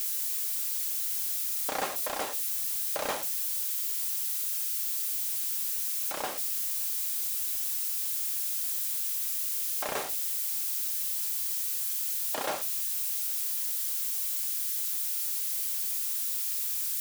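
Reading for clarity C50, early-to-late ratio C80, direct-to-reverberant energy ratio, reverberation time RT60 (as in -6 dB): 22.0 dB, 27.5 dB, 8.5 dB, not exponential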